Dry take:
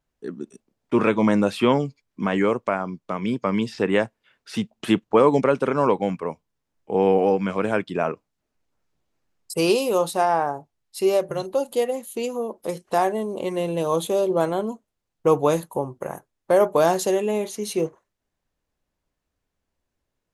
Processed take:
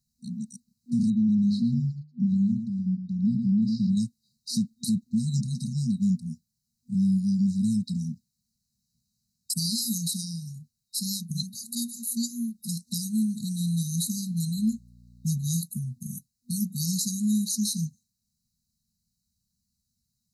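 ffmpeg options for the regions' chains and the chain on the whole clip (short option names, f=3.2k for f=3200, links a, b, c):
-filter_complex "[0:a]asettb=1/sr,asplit=3[a][b][c];[a]atrim=end=1.104[d];[b]atrim=start=1.1:end=3.97,asetpts=PTS-STARTPTS,afade=t=in:d=0.004:c=qsin,afade=t=out:st=2.866:d=0.004:c=qsin,lowpass=2.5k,bandreject=f=50:t=h:w=6,bandreject=f=100:t=h:w=6,bandreject=f=150:t=h:w=6,aecho=1:1:113:0.376,atrim=end_sample=126567[e];[c]atrim=start=3.966[f];[d][e]acrossfade=d=0.004:c1=hsin:c2=qsin[g];[g][f]acrossfade=d=0.004:c1=qsin:c2=hsin,asettb=1/sr,asplit=3[h][i][j];[h]atrim=end=14.574[k];[i]atrim=start=14.57:end=15.49,asetpts=PTS-STARTPTS,afade=t=in:d=0.004:c=qsin,afade=t=out:st=0.916:d=0.004:c=qsin,equalizer=f=2.7k:t=o:w=1.2:g=9.5,aeval=exprs='val(0)+0.00224*(sin(2*PI*60*n/s)+sin(2*PI*2*60*n/s)/2+sin(2*PI*3*60*n/s)/3+sin(2*PI*4*60*n/s)/4+sin(2*PI*5*60*n/s)/5)':c=same[l];[j]atrim=start=15.486[m];[k][l]acrossfade=d=0.004:c1=hsin:c2=qsin[n];[n][m]acrossfade=d=0.004:c1=qsin:c2=hsin,afftfilt=real='re*(1-between(b*sr/4096,240,3800))':imag='im*(1-between(b*sr/4096,240,3800))':win_size=4096:overlap=0.75,highpass=f=170:p=1,alimiter=level_in=2dB:limit=-24dB:level=0:latency=1:release=67,volume=-2dB,volume=8.5dB"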